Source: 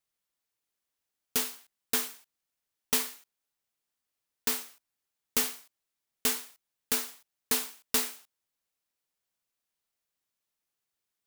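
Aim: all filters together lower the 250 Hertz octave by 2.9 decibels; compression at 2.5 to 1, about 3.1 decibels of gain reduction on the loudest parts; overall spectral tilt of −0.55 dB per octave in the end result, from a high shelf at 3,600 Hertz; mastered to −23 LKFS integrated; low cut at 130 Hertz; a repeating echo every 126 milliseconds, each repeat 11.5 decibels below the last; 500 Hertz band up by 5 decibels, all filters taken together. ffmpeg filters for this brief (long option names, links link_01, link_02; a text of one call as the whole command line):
ffmpeg -i in.wav -af "highpass=130,equalizer=frequency=250:width_type=o:gain=-4,equalizer=frequency=500:width_type=o:gain=7,highshelf=frequency=3600:gain=-3.5,acompressor=threshold=-29dB:ratio=2.5,aecho=1:1:126|252|378:0.266|0.0718|0.0194,volume=13dB" out.wav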